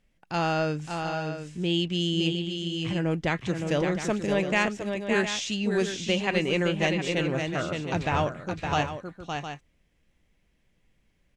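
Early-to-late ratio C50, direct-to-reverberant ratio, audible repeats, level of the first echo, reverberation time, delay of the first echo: no reverb audible, no reverb audible, 2, −5.5 dB, no reverb audible, 565 ms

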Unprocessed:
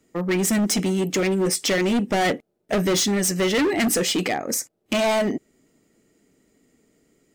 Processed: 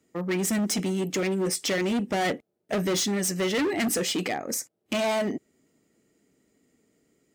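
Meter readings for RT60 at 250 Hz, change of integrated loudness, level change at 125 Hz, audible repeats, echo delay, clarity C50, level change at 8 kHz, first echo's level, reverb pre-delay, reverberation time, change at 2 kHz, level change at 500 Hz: no reverb audible, −5.0 dB, −5.0 dB, no echo audible, no echo audible, no reverb audible, −5.0 dB, no echo audible, no reverb audible, no reverb audible, −5.0 dB, −5.0 dB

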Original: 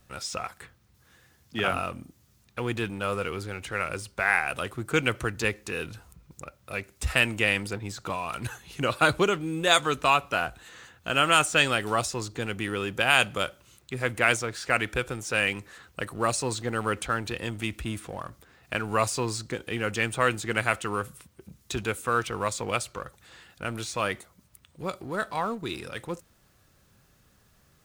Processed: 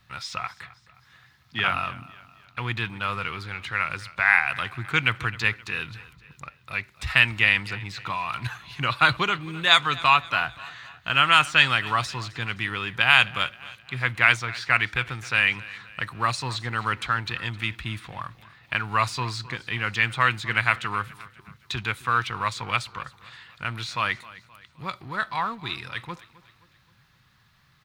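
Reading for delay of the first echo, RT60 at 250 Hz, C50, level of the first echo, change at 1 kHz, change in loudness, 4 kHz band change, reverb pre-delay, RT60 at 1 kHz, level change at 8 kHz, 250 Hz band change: 262 ms, no reverb audible, no reverb audible, −19.5 dB, +3.5 dB, +3.5 dB, +5.0 dB, no reverb audible, no reverb audible, −7.5 dB, −4.5 dB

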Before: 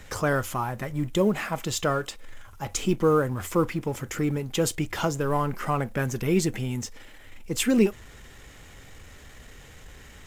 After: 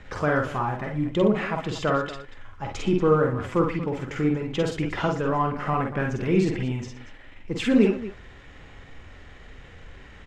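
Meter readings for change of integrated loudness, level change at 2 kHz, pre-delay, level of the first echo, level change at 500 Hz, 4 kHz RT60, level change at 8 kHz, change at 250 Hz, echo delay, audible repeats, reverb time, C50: +1.5 dB, +1.5 dB, no reverb audible, −3.5 dB, +2.0 dB, no reverb audible, −13.0 dB, +2.5 dB, 47 ms, 3, no reverb audible, no reverb audible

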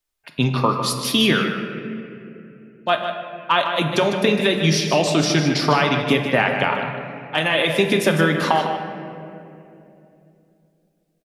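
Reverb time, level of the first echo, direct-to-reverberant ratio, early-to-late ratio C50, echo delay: 2.9 s, −9.0 dB, 2.5 dB, 4.0 dB, 152 ms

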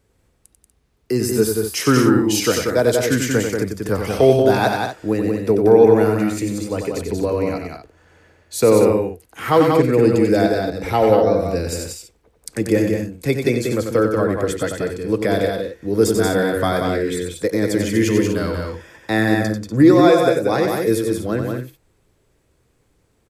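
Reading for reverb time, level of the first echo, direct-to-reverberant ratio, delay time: no reverb audible, −6.0 dB, no reverb audible, 92 ms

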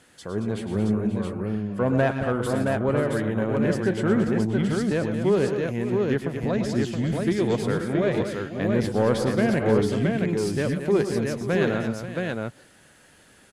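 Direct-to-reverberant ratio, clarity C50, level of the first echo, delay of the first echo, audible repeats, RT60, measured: no reverb audible, no reverb audible, −11.0 dB, 107 ms, 4, no reverb audible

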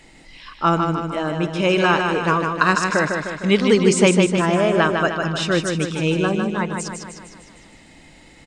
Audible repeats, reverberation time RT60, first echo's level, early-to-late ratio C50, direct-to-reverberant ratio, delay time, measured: 6, no reverb audible, −5.0 dB, no reverb audible, no reverb audible, 153 ms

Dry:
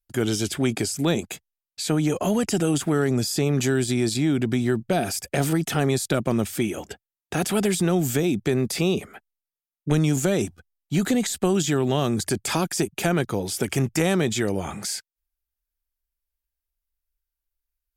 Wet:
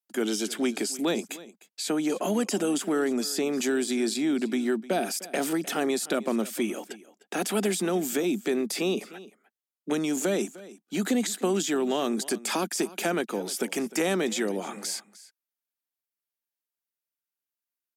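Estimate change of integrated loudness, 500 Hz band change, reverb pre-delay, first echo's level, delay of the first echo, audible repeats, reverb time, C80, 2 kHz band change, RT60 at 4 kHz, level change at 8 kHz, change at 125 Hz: −4.0 dB, −3.0 dB, no reverb audible, −18.5 dB, 304 ms, 1, no reverb audible, no reverb audible, −3.0 dB, no reverb audible, −3.0 dB, −17.0 dB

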